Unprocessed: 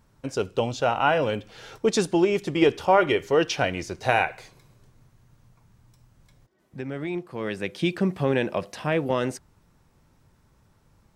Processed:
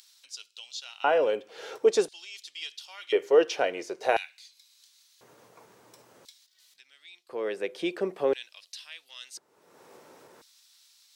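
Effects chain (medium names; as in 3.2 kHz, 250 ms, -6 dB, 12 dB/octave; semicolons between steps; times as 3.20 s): high-pass 54 Hz; upward compressor, threshold -29 dBFS; LFO high-pass square 0.48 Hz 440–4000 Hz; trim -5.5 dB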